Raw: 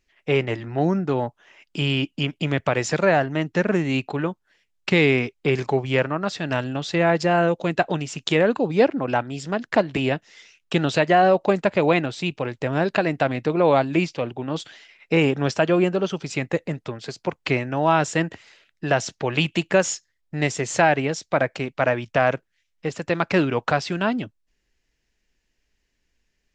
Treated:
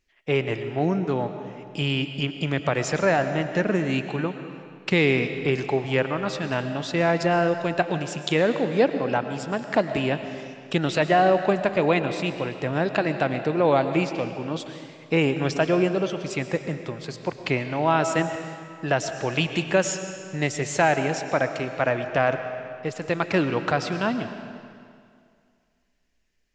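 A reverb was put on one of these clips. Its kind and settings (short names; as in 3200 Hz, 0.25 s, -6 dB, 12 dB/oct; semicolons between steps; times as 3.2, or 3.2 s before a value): digital reverb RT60 2.2 s, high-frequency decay 0.9×, pre-delay 75 ms, DRR 8.5 dB; gain -2.5 dB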